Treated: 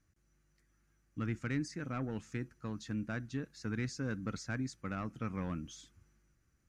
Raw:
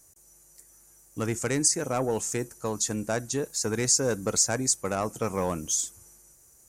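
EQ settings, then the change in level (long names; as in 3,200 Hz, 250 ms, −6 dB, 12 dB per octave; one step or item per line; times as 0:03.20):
high-frequency loss of the air 330 metres
flat-topped bell 620 Hz −12.5 dB
−4.5 dB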